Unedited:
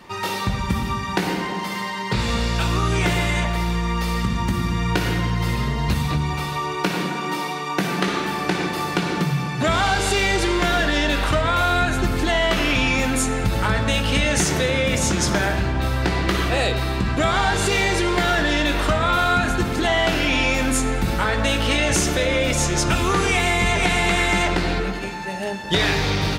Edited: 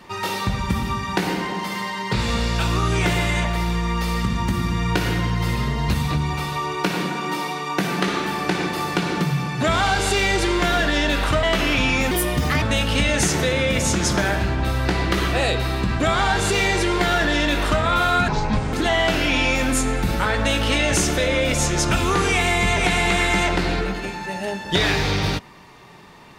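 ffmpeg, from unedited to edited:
ffmpeg -i in.wav -filter_complex "[0:a]asplit=6[link_01][link_02][link_03][link_04][link_05][link_06];[link_01]atrim=end=11.432[link_07];[link_02]atrim=start=12.408:end=13.094[link_08];[link_03]atrim=start=13.09:end=13.79,asetpts=PTS-STARTPTS,asetrate=60417,aresample=44100[link_09];[link_04]atrim=start=13.786:end=19.454[link_10];[link_05]atrim=start=19.45:end=19.72,asetpts=PTS-STARTPTS,asetrate=26460,aresample=44100[link_11];[link_06]atrim=start=19.716[link_12];[link_07][link_08]acrossfade=duration=0.004:curve1=hsin:curve2=hsin[link_13];[link_13][link_09]acrossfade=duration=0.004:curve1=hsin:curve2=hsin[link_14];[link_14][link_10]acrossfade=duration=0.004:curve1=hsin:curve2=hsin[link_15];[link_15][link_11]acrossfade=duration=0.004:curve1=hsin:curve2=hsin[link_16];[link_16][link_12]acrossfade=duration=0.004:curve1=hsin:curve2=hsin" out.wav

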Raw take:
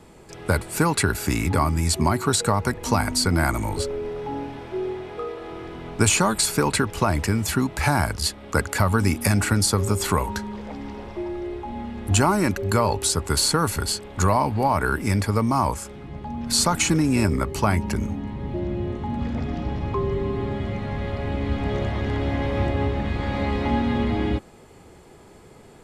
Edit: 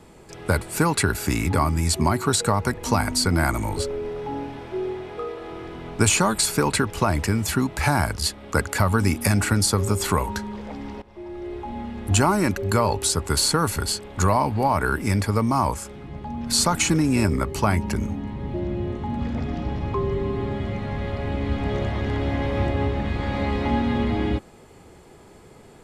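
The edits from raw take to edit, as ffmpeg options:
ffmpeg -i in.wav -filter_complex "[0:a]asplit=2[link_01][link_02];[link_01]atrim=end=11.02,asetpts=PTS-STARTPTS,afade=type=out:start_time=11.016:duration=0.004:curve=hsin:silence=0.112202[link_03];[link_02]atrim=start=11.02,asetpts=PTS-STARTPTS,afade=type=in:duration=0.6:silence=0.112202[link_04];[link_03][link_04]concat=n=2:v=0:a=1" out.wav

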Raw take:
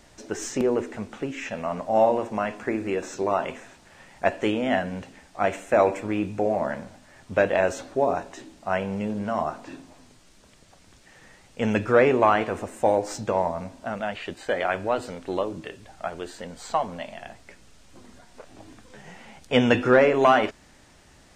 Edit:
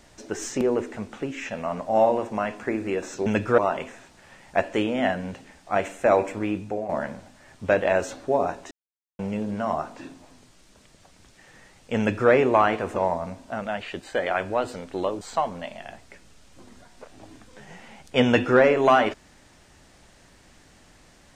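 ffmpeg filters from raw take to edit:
ffmpeg -i in.wav -filter_complex "[0:a]asplit=8[link_01][link_02][link_03][link_04][link_05][link_06][link_07][link_08];[link_01]atrim=end=3.262[link_09];[link_02]atrim=start=11.658:end=11.982[link_10];[link_03]atrim=start=3.258:end=6.57,asetpts=PTS-STARTPTS,afade=type=out:start_time=2.742:duration=0.57:curve=qsin:silence=0.316228[link_11];[link_04]atrim=start=6.57:end=8.39,asetpts=PTS-STARTPTS,afade=type=in:duration=0.004:curve=hsin:silence=0.316228,afade=type=out:start_time=1.816:duration=0.004:curve=hsin[link_12];[link_05]atrim=start=8.39:end=8.87,asetpts=PTS-STARTPTS,volume=0[link_13];[link_06]atrim=start=8.87:end=12.642,asetpts=PTS-STARTPTS,afade=type=in:duration=0.004:curve=hsin[link_14];[link_07]atrim=start=13.298:end=15.552[link_15];[link_08]atrim=start=16.578[link_16];[link_09][link_10]acrossfade=duration=0.004:curve1=hsin:curve2=hsin[link_17];[link_11][link_12][link_13][link_14]concat=n=4:v=0:a=1[link_18];[link_17][link_18]acrossfade=duration=0.004:curve1=hsin:curve2=hsin[link_19];[link_19][link_15]acrossfade=duration=0.004:curve1=hsin:curve2=hsin[link_20];[link_20][link_16]acrossfade=duration=0.004:curve1=hsin:curve2=hsin" out.wav

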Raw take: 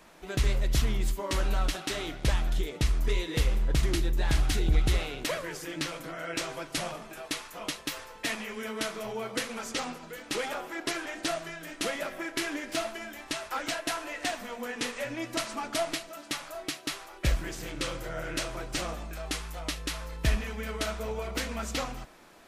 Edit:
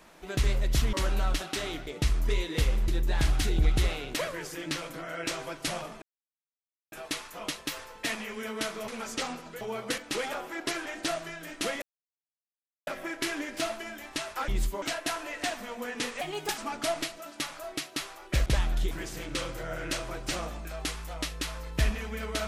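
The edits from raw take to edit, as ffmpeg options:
ffmpeg -i in.wav -filter_complex "[0:a]asplit=15[link_01][link_02][link_03][link_04][link_05][link_06][link_07][link_08][link_09][link_10][link_11][link_12][link_13][link_14][link_15];[link_01]atrim=end=0.932[link_16];[link_02]atrim=start=1.268:end=2.212[link_17];[link_03]atrim=start=2.658:end=3.672[link_18];[link_04]atrim=start=3.978:end=7.12,asetpts=PTS-STARTPTS,afade=type=out:start_time=3.138:duration=0.004:curve=hsin,apad=pad_dur=0.9[link_19];[link_05]atrim=start=7.12:end=9.082,asetpts=PTS-STARTPTS,afade=type=in:duration=0.004:curve=hsin[link_20];[link_06]atrim=start=9.448:end=10.182[link_21];[link_07]atrim=start=9.078:end=9.452[link_22];[link_08]atrim=start=10.178:end=12.02,asetpts=PTS-STARTPTS,afade=type=out:start_time=1.838:duration=0.004:curve=hsin,apad=pad_dur=1.05[link_23];[link_09]atrim=start=12.02:end=13.632,asetpts=PTS-STARTPTS,afade=type=in:duration=0.004:curve=hsin[link_24];[link_10]atrim=start=0.928:end=1.272[link_25];[link_11]atrim=start=13.628:end=15.024[link_26];[link_12]atrim=start=15.02:end=15.49,asetpts=PTS-STARTPTS,asetrate=56007,aresample=44100,atrim=end_sample=16320,asetpts=PTS-STARTPTS[link_27];[link_13]atrim=start=15.486:end=17.372[link_28];[link_14]atrim=start=2.208:end=2.662[link_29];[link_15]atrim=start=17.368[link_30];[link_16][link_17]acrossfade=duration=0.004:curve1=hsin:curve2=hsin[link_31];[link_31][link_18]acrossfade=duration=0.004:curve1=hsin:curve2=hsin[link_32];[link_19][link_20]concat=n=2:v=0:a=1[link_33];[link_32][link_33]acrossfade=duration=0.004:curve1=hsin:curve2=hsin[link_34];[link_34][link_21]acrossfade=duration=0.004:curve1=hsin:curve2=hsin[link_35];[link_35][link_22]acrossfade=duration=0.004:curve1=hsin:curve2=hsin[link_36];[link_23][link_24]concat=n=2:v=0:a=1[link_37];[link_36][link_37]acrossfade=duration=0.004:curve1=hsin:curve2=hsin[link_38];[link_38][link_25]acrossfade=duration=0.004:curve1=hsin:curve2=hsin[link_39];[link_39][link_26]acrossfade=duration=0.004:curve1=hsin:curve2=hsin[link_40];[link_40][link_27]acrossfade=duration=0.004:curve1=hsin:curve2=hsin[link_41];[link_41][link_28]acrossfade=duration=0.004:curve1=hsin:curve2=hsin[link_42];[link_42][link_29]acrossfade=duration=0.004:curve1=hsin:curve2=hsin[link_43];[link_43][link_30]acrossfade=duration=0.004:curve1=hsin:curve2=hsin" out.wav

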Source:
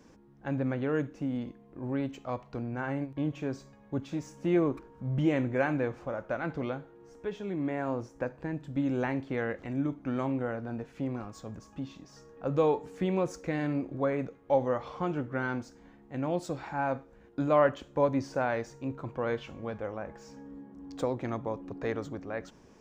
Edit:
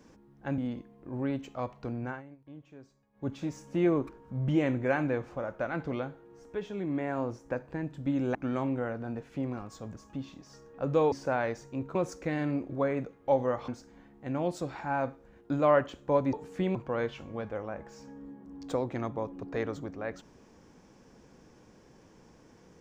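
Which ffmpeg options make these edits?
ffmpeg -i in.wav -filter_complex "[0:a]asplit=10[link_01][link_02][link_03][link_04][link_05][link_06][link_07][link_08][link_09][link_10];[link_01]atrim=end=0.582[link_11];[link_02]atrim=start=1.278:end=2.92,asetpts=PTS-STARTPTS,afade=type=out:start_time=1.482:duration=0.16:silence=0.141254[link_12];[link_03]atrim=start=2.92:end=3.83,asetpts=PTS-STARTPTS,volume=-17dB[link_13];[link_04]atrim=start=3.83:end=9.052,asetpts=PTS-STARTPTS,afade=type=in:duration=0.16:silence=0.141254[link_14];[link_05]atrim=start=9.978:end=12.752[link_15];[link_06]atrim=start=18.208:end=19.042[link_16];[link_07]atrim=start=13.168:end=14.902[link_17];[link_08]atrim=start=15.558:end=18.212[link_18];[link_09]atrim=start=12.748:end=13.172[link_19];[link_10]atrim=start=19.038[link_20];[link_12][link_13][link_14]concat=n=3:v=0:a=1[link_21];[link_11][link_21]acrossfade=duration=0.004:curve1=hsin:curve2=hsin[link_22];[link_22][link_15]acrossfade=duration=0.004:curve1=hsin:curve2=hsin[link_23];[link_23][link_16]acrossfade=duration=0.004:curve1=hsin:curve2=hsin[link_24];[link_24][link_17]acrossfade=duration=0.004:curve1=hsin:curve2=hsin[link_25];[link_25][link_18]acrossfade=duration=0.004:curve1=hsin:curve2=hsin[link_26];[link_26][link_19]acrossfade=duration=0.004:curve1=hsin:curve2=hsin[link_27];[link_27][link_20]acrossfade=duration=0.004:curve1=hsin:curve2=hsin" out.wav

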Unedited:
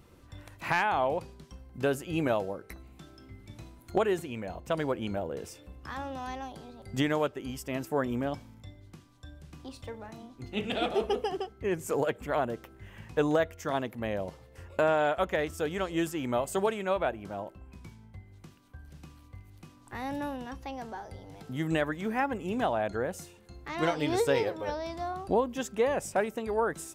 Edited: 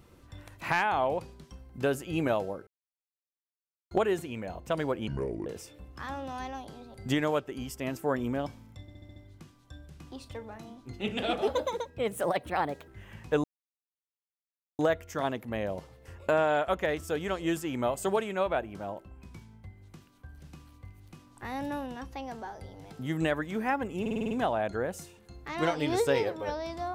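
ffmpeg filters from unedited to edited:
ffmpeg -i in.wav -filter_complex "[0:a]asplit=19[link_01][link_02][link_03][link_04][link_05][link_06][link_07][link_08][link_09][link_10][link_11][link_12][link_13][link_14][link_15][link_16][link_17][link_18][link_19];[link_01]atrim=end=2.67,asetpts=PTS-STARTPTS,afade=type=out:start_time=2.666:duration=0.004:curve=hsin[link_20];[link_02]atrim=start=2.67:end=3.91,asetpts=PTS-STARTPTS,volume=0[link_21];[link_03]atrim=start=3.91:end=5.084,asetpts=PTS-STARTPTS,afade=type=in:duration=0.004:curve=hsin[link_22];[link_04]atrim=start=5.08:end=5.34,asetpts=PTS-STARTPTS,asetrate=29988,aresample=44100[link_23];[link_05]atrim=start=5.336:end=8.762[link_24];[link_06]atrim=start=8.688:end=8.762[link_25];[link_07]atrim=start=8.688:end=8.762[link_26];[link_08]atrim=start=8.688:end=8.762[link_27];[link_09]atrim=start=8.688:end=8.762[link_28];[link_10]atrim=start=8.688:end=11.004[link_29];[link_11]atrim=start=11:end=12.73,asetpts=PTS-STARTPTS,asetrate=54243,aresample=44100[link_30];[link_12]atrim=start=12.726:end=13.29,asetpts=PTS-STARTPTS,afade=type=out:start_time=0.56:duration=0.004:curve=hsin,apad=pad_dur=1.35[link_31];[link_13]atrim=start=13.29:end=22.562,asetpts=PTS-STARTPTS,afade=type=in:duration=0.004:curve=hsin[link_32];[link_14]atrim=start=22.508:end=22.562[link_33];[link_15]atrim=start=22.508:end=22.562[link_34];[link_16]atrim=start=22.508:end=22.562[link_35];[link_17]atrim=start=22.508:end=22.562[link_36];[link_18]atrim=start=22.508:end=22.562[link_37];[link_19]atrim=start=22.508[link_38];[link_20][link_21][link_22]concat=n=3:v=0:a=1[link_39];[link_39][link_23]acrossfade=duration=0.004:curve1=hsin:curve2=hsin[link_40];[link_40][link_24]acrossfade=duration=0.004:curve1=hsin:curve2=hsin[link_41];[link_41][link_25]acrossfade=duration=0.004:curve1=hsin:curve2=hsin[link_42];[link_42][link_26]acrossfade=duration=0.004:curve1=hsin:curve2=hsin[link_43];[link_43][link_27]acrossfade=duration=0.004:curve1=hsin:curve2=hsin[link_44];[link_44][link_28]acrossfade=duration=0.004:curve1=hsin:curve2=hsin[link_45];[link_45][link_29]acrossfade=duration=0.004:curve1=hsin:curve2=hsin[link_46];[link_46][link_30]acrossfade=duration=0.004:curve1=hsin:curve2=hsin[link_47];[link_31][link_32]concat=n=2:v=0:a=1[link_48];[link_47][link_48]acrossfade=duration=0.004:curve1=hsin:curve2=hsin[link_49];[link_49][link_33]acrossfade=duration=0.004:curve1=hsin:curve2=hsin[link_50];[link_50][link_34]acrossfade=duration=0.004:curve1=hsin:curve2=hsin[link_51];[link_51][link_35]acrossfade=duration=0.004:curve1=hsin:curve2=hsin[link_52];[link_52][link_36]acrossfade=duration=0.004:curve1=hsin:curve2=hsin[link_53];[link_53][link_37]acrossfade=duration=0.004:curve1=hsin:curve2=hsin[link_54];[link_54][link_38]acrossfade=duration=0.004:curve1=hsin:curve2=hsin" out.wav

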